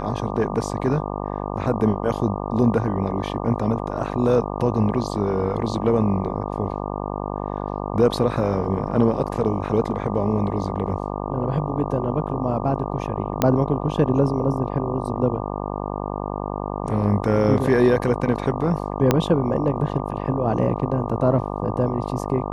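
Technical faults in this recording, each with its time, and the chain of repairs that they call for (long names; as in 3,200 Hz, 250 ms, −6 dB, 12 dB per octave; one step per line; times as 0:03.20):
mains buzz 50 Hz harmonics 24 −28 dBFS
0:13.42: click −4 dBFS
0:19.11: click −3 dBFS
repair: click removal
hum removal 50 Hz, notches 24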